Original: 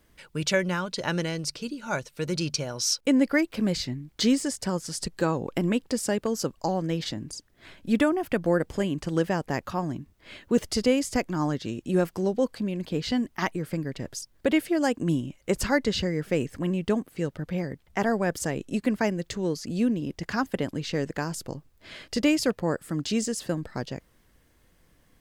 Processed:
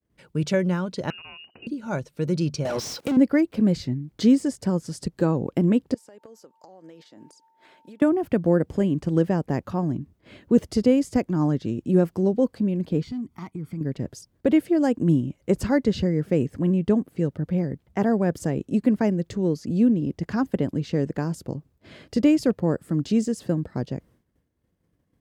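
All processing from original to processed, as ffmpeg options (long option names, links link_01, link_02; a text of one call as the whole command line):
ffmpeg -i in.wav -filter_complex "[0:a]asettb=1/sr,asplit=3[link_01][link_02][link_03];[link_01]atrim=end=1.104[link_04];[link_02]atrim=start=1.1:end=1.67,asetpts=PTS-STARTPTS,afade=type=in:duration=0.004:curve=qsin,afade=type=out:start_time=0.566:duration=0.004:curve=qsin,acompressor=threshold=-33dB:ratio=5:attack=3.2:release=140:knee=1:detection=peak,lowpass=frequency=2600:width_type=q:width=0.5098,lowpass=frequency=2600:width_type=q:width=0.6013,lowpass=frequency=2600:width_type=q:width=0.9,lowpass=frequency=2600:width_type=q:width=2.563,afreqshift=-3000[link_05];[link_03]atrim=start=1.666[link_06];[link_04][link_05]acrossfade=duration=0.004:curve1=hsin:curve2=qsin[link_07];[link_07][link_06]acrossfade=duration=0.004:curve1=qsin:curve2=hsin,asettb=1/sr,asplit=3[link_08][link_09][link_10];[link_08]atrim=end=2.654[link_11];[link_09]atrim=start=2.65:end=3.17,asetpts=PTS-STARTPTS,afade=type=in:duration=0.004:curve=qsin,afade=type=out:start_time=0.516:duration=0.004:curve=qsin,highpass=98,asplit=2[link_12][link_13];[link_13]highpass=frequency=720:poles=1,volume=36dB,asoftclip=type=tanh:threshold=-12dB[link_14];[link_12][link_14]amix=inputs=2:normalize=0,lowpass=frequency=7700:poles=1,volume=-6dB,acompressor=threshold=-26dB:ratio=6:attack=3.2:release=140:knee=1:detection=peak[link_15];[link_10]atrim=start=3.166[link_16];[link_11][link_15]acrossfade=duration=0.004:curve1=hsin:curve2=qsin[link_17];[link_17][link_16]acrossfade=duration=0.004:curve1=qsin:curve2=hsin,asettb=1/sr,asplit=3[link_18][link_19][link_20];[link_18]atrim=end=5.944[link_21];[link_19]atrim=start=5.94:end=8.02,asetpts=PTS-STARTPTS,afade=type=in:duration=0.004:curve=qsin,afade=type=out:start_time=2.076:duration=0.004:curve=qsin,aeval=exprs='val(0)+0.002*sin(2*PI*900*n/s)':channel_layout=same,highpass=510,acompressor=threshold=-44dB:ratio=16:attack=3.2:release=140:knee=1:detection=peak[link_22];[link_20]atrim=start=8.016[link_23];[link_21][link_22]acrossfade=duration=0.004:curve1=hsin:curve2=qsin[link_24];[link_24][link_23]acrossfade=duration=0.004:curve1=qsin:curve2=hsin,asettb=1/sr,asplit=3[link_25][link_26][link_27];[link_25]atrim=end=13.034[link_28];[link_26]atrim=start=13.03:end=13.81,asetpts=PTS-STARTPTS,afade=type=in:duration=0.004:curve=qsin,afade=type=out:start_time=0.776:duration=0.004:curve=qsin,aecho=1:1:0.9:0.72,atrim=end_sample=34398,acompressor=threshold=-43dB:ratio=2:attack=3.2:release=140:knee=1:detection=peak,asoftclip=type=hard:threshold=-31.5dB[link_29];[link_27]atrim=start=13.806[link_30];[link_28][link_29]acrossfade=duration=0.004:curve1=hsin:curve2=qsin[link_31];[link_31][link_30]acrossfade=duration=0.004:curve1=qsin:curve2=hsin,agate=range=-33dB:threshold=-52dB:ratio=3:detection=peak,highpass=76,tiltshelf=frequency=700:gain=7.5" out.wav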